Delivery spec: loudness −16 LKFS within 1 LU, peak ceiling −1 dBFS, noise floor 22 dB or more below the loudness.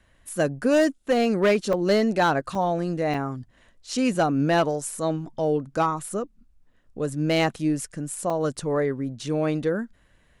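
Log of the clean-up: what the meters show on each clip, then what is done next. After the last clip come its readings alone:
share of clipped samples 0.7%; peaks flattened at −14.0 dBFS; number of dropouts 4; longest dropout 3.5 ms; integrated loudness −24.5 LKFS; sample peak −14.0 dBFS; target loudness −16.0 LKFS
→ clipped peaks rebuilt −14 dBFS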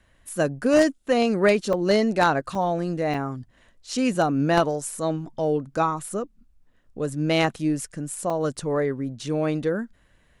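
share of clipped samples 0.0%; number of dropouts 4; longest dropout 3.5 ms
→ repair the gap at 0:01.73/0:02.55/0:03.14/0:08.30, 3.5 ms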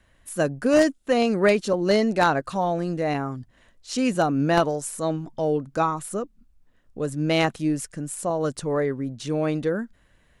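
number of dropouts 0; integrated loudness −24.0 LKFS; sample peak −5.0 dBFS; target loudness −16.0 LKFS
→ level +8 dB
brickwall limiter −1 dBFS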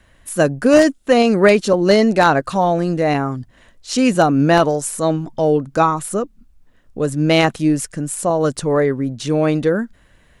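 integrated loudness −16.5 LKFS; sample peak −1.0 dBFS; background noise floor −53 dBFS

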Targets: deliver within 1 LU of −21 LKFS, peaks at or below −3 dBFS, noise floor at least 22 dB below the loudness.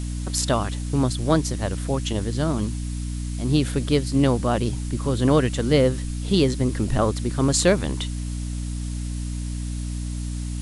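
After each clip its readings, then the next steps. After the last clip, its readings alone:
mains hum 60 Hz; hum harmonics up to 300 Hz; level of the hum −26 dBFS; background noise floor −29 dBFS; target noise floor −46 dBFS; integrated loudness −23.5 LKFS; sample peak −3.0 dBFS; target loudness −21.0 LKFS
→ hum removal 60 Hz, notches 5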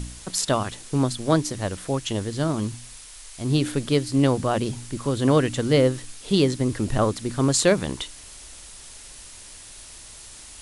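mains hum none found; background noise floor −44 dBFS; target noise floor −46 dBFS
→ noise reduction from a noise print 6 dB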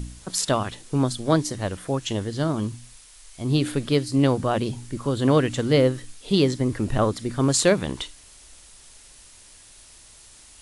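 background noise floor −50 dBFS; integrated loudness −23.5 LKFS; sample peak −4.0 dBFS; target loudness −21.0 LKFS
→ level +2.5 dB
brickwall limiter −3 dBFS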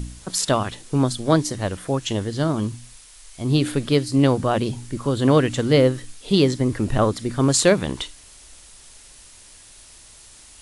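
integrated loudness −21.0 LKFS; sample peak −3.0 dBFS; background noise floor −47 dBFS

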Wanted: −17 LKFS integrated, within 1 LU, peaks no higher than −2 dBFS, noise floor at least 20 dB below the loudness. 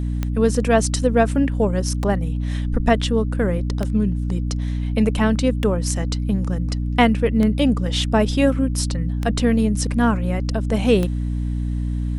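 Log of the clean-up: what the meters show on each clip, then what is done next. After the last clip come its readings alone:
number of clicks 7; mains hum 60 Hz; hum harmonics up to 300 Hz; level of the hum −20 dBFS; integrated loudness −20.5 LKFS; sample peak −3.5 dBFS; target loudness −17.0 LKFS
→ click removal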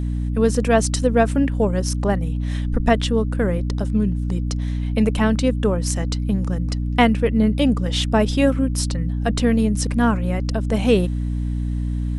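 number of clicks 0; mains hum 60 Hz; hum harmonics up to 300 Hz; level of the hum −20 dBFS
→ hum removal 60 Hz, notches 5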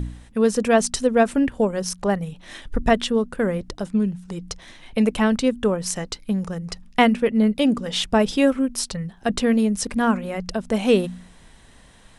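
mains hum none found; integrated loudness −22.0 LKFS; sample peak −4.5 dBFS; target loudness −17.0 LKFS
→ level +5 dB
brickwall limiter −2 dBFS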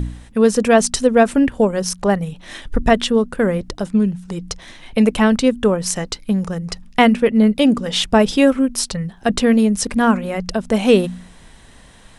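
integrated loudness −17.0 LKFS; sample peak −2.0 dBFS; background noise floor −45 dBFS

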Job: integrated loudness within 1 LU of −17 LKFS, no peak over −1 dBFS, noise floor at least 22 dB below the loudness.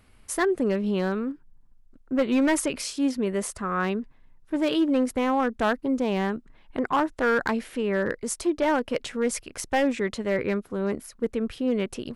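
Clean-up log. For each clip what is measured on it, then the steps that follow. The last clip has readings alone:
share of clipped samples 1.2%; peaks flattened at −16.5 dBFS; integrated loudness −26.5 LKFS; sample peak −16.5 dBFS; target loudness −17.0 LKFS
→ clipped peaks rebuilt −16.5 dBFS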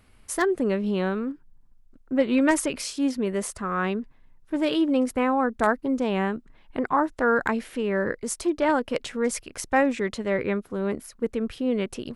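share of clipped samples 0.0%; integrated loudness −25.5 LKFS; sample peak −7.5 dBFS; target loudness −17.0 LKFS
→ level +8.5 dB
brickwall limiter −1 dBFS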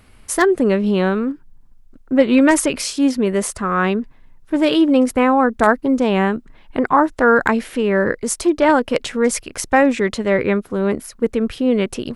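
integrated loudness −17.5 LKFS; sample peak −1.0 dBFS; background noise floor −47 dBFS

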